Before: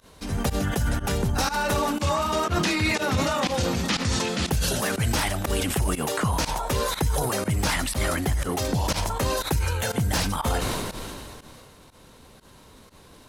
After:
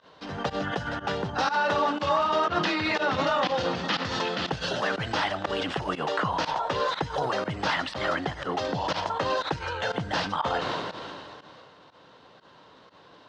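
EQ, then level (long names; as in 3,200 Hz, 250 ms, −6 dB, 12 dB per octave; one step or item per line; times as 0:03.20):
loudspeaker in its box 160–4,100 Hz, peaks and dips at 230 Hz −8 dB, 390 Hz −4 dB, 2,300 Hz −8 dB, 3,900 Hz −3 dB
low-shelf EQ 250 Hz −7 dB
+2.5 dB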